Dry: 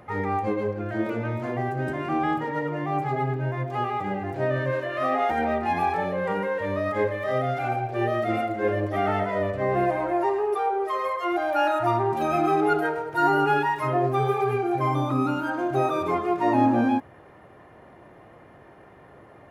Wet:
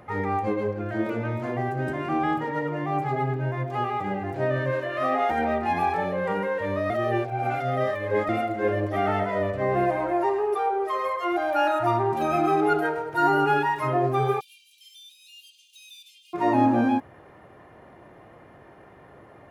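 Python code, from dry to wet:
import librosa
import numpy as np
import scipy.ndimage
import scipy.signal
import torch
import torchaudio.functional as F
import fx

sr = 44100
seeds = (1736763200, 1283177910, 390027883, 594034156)

y = fx.steep_highpass(x, sr, hz=2700.0, slope=96, at=(14.39, 16.33), fade=0.02)
y = fx.edit(y, sr, fx.reverse_span(start_s=6.9, length_s=1.39), tone=tone)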